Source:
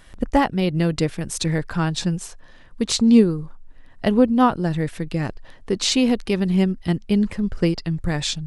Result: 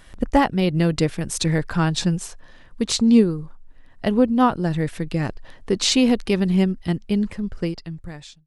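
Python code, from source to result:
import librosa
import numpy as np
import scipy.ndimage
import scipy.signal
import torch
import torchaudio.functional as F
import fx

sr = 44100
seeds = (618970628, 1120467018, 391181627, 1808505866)

y = fx.fade_out_tail(x, sr, length_s=2.12)
y = fx.rider(y, sr, range_db=3, speed_s=2.0)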